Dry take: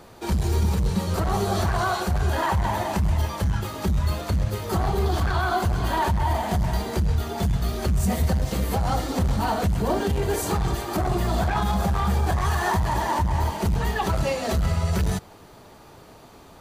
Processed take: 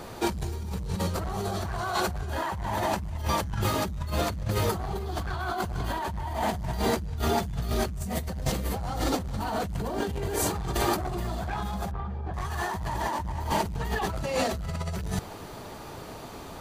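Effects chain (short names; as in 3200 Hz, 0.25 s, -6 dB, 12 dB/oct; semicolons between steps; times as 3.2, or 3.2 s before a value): negative-ratio compressor -30 dBFS, ratio -1; 11.91–12.34 tape spacing loss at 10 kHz 37 dB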